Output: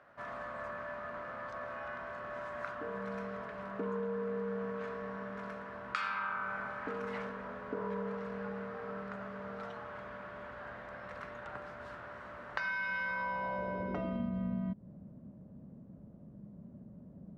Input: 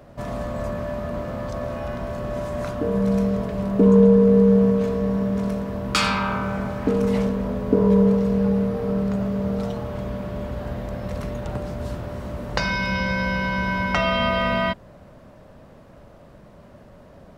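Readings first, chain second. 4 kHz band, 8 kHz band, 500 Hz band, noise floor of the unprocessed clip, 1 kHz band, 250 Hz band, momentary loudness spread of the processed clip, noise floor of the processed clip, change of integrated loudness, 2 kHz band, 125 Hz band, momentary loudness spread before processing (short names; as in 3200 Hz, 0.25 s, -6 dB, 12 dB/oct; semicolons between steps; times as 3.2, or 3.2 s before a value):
-23.5 dB, under -25 dB, -18.0 dB, -47 dBFS, -11.5 dB, -21.5 dB, 16 LU, -53 dBFS, -17.5 dB, -10.5 dB, -21.5 dB, 14 LU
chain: band-pass sweep 1500 Hz -> 200 Hz, 13.02–14.35; low shelf 140 Hz +8 dB; compressor 6:1, threshold -32 dBFS, peak gain reduction 9.5 dB; gain -1 dB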